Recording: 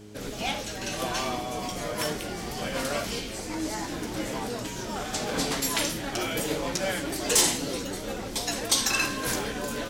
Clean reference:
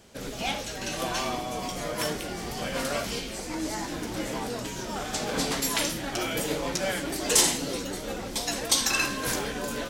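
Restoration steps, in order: clip repair -12.5 dBFS; de-hum 104.9 Hz, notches 4

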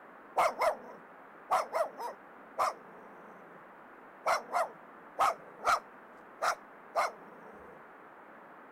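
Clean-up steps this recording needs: clip repair -20.5 dBFS; noise print and reduce 24 dB

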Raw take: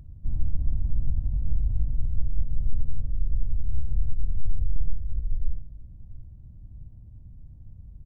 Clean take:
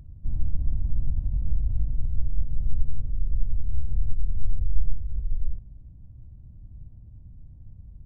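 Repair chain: clip repair -12 dBFS; inverse comb 0.691 s -19 dB

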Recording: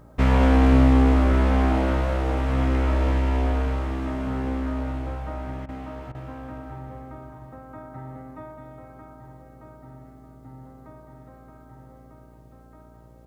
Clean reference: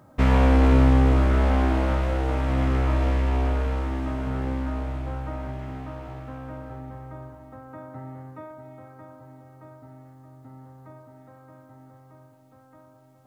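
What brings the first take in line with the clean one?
de-hum 58.2 Hz, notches 11; interpolate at 5.66/6.12, 26 ms; inverse comb 0.211 s -7 dB

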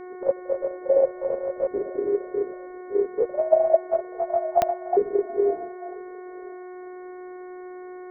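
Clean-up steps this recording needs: de-click; de-hum 364.5 Hz, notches 6; inverse comb 0.994 s -23 dB

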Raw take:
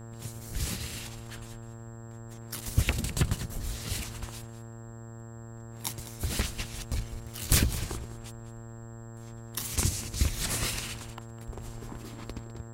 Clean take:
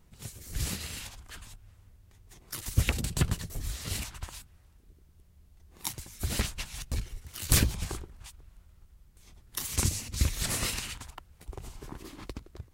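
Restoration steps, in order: clip repair -6 dBFS; de-hum 114.6 Hz, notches 16; notch 7600 Hz, Q 30; inverse comb 0.204 s -14.5 dB

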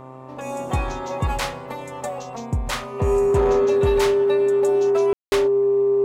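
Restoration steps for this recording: clip repair -12 dBFS; de-hum 130.4 Hz, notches 9; notch 400 Hz, Q 30; room tone fill 5.13–5.32

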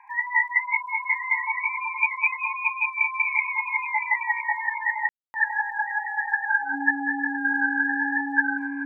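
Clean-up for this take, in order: de-click; notch 280 Hz, Q 30; room tone fill 5.09–5.34; inverse comb 1.012 s -10.5 dB

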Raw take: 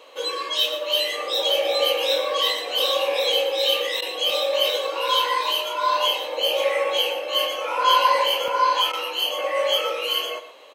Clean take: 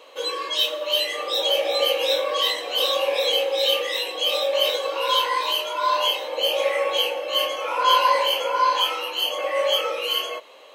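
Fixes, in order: interpolate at 4.3/8.48, 1.6 ms; interpolate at 4.01/8.92, 10 ms; inverse comb 0.118 s -11.5 dB

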